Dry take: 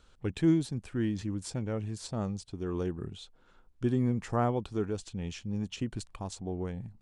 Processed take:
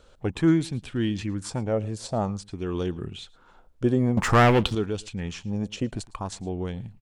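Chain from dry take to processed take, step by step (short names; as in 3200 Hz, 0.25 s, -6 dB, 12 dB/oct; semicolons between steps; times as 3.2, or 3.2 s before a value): 4.17–4.75 sample leveller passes 3; echo 0.11 s -23 dB; LFO bell 0.52 Hz 530–3500 Hz +11 dB; gain +4.5 dB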